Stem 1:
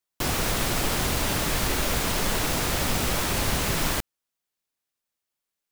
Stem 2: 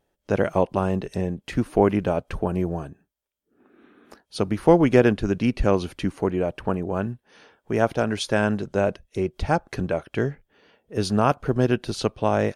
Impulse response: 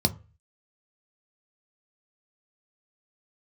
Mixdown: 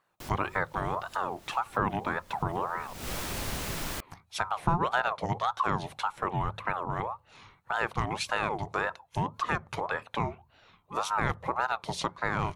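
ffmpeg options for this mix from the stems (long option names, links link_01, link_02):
-filter_complex "[0:a]volume=-9dB,afade=type=in:start_time=2.27:duration=0.72:silence=0.398107[link_01];[1:a]acompressor=threshold=-29dB:ratio=2,aeval=exprs='val(0)*sin(2*PI*820*n/s+820*0.4/1.8*sin(2*PI*1.8*n/s))':channel_layout=same,volume=1.5dB,asplit=3[link_02][link_03][link_04];[link_03]volume=-24dB[link_05];[link_04]apad=whole_len=252183[link_06];[link_01][link_06]sidechaincompress=threshold=-48dB:ratio=8:attack=11:release=199[link_07];[2:a]atrim=start_sample=2205[link_08];[link_05][link_08]afir=irnorm=-1:irlink=0[link_09];[link_07][link_02][link_09]amix=inputs=3:normalize=0"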